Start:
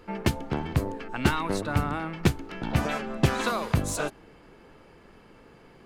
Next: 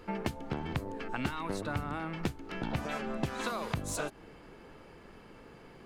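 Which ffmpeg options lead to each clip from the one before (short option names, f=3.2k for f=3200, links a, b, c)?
-af "acompressor=threshold=-31dB:ratio=6"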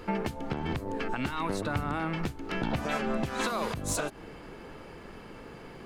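-af "alimiter=level_in=2dB:limit=-24dB:level=0:latency=1:release=180,volume=-2dB,volume=7dB"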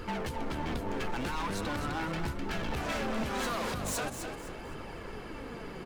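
-filter_complex "[0:a]volume=35dB,asoftclip=hard,volume=-35dB,flanger=delay=0.6:depth=5.5:regen=54:speed=0.42:shape=triangular,asplit=5[a][b][c][d][e];[b]adelay=256,afreqshift=32,volume=-8dB[f];[c]adelay=512,afreqshift=64,volume=-18.2dB[g];[d]adelay=768,afreqshift=96,volume=-28.3dB[h];[e]adelay=1024,afreqshift=128,volume=-38.5dB[i];[a][f][g][h][i]amix=inputs=5:normalize=0,volume=7dB"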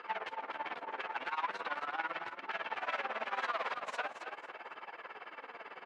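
-af "tremolo=f=18:d=0.85,asuperpass=centerf=1400:order=4:qfactor=0.67,volume=4dB"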